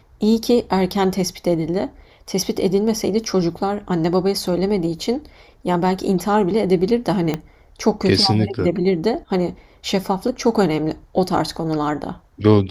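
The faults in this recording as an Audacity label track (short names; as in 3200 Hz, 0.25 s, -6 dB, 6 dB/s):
7.340000	7.340000	pop -9 dBFS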